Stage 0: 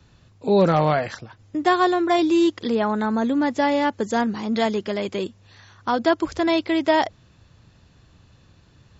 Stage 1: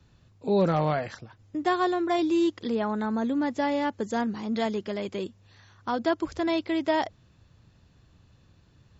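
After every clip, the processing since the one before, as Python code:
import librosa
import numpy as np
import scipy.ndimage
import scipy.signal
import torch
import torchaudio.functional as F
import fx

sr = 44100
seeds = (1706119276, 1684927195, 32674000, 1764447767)

y = fx.low_shelf(x, sr, hz=420.0, db=3.0)
y = F.gain(torch.from_numpy(y), -7.5).numpy()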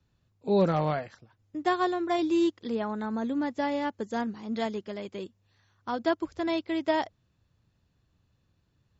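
y = fx.upward_expand(x, sr, threshold_db=-44.0, expansion=1.5)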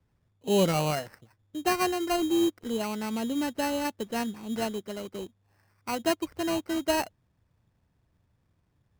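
y = fx.sample_hold(x, sr, seeds[0], rate_hz=3500.0, jitter_pct=0)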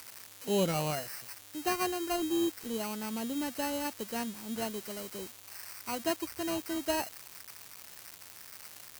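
y = x + 0.5 * 10.0 ** (-23.5 / 20.0) * np.diff(np.sign(x), prepend=np.sign(x[:1]))
y = F.gain(torch.from_numpy(y), -5.5).numpy()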